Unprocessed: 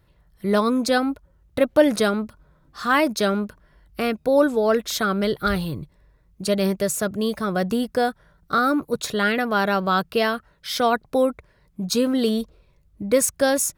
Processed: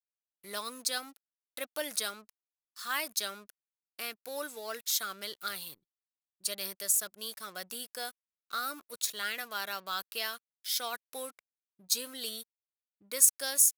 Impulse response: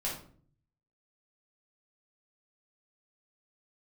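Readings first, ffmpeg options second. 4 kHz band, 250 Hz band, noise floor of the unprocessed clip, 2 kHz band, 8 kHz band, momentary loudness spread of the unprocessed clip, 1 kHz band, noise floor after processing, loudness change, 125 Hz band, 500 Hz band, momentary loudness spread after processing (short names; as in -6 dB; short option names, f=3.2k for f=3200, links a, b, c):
-5.5 dB, -29.5 dB, -60 dBFS, -13.0 dB, 0.0 dB, 12 LU, -16.5 dB, under -85 dBFS, -11.0 dB, under -30 dB, -22.5 dB, 14 LU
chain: -af "aeval=exprs='sgn(val(0))*max(abs(val(0))-0.00596,0)':c=same,aderivative,anlmdn=0.000398"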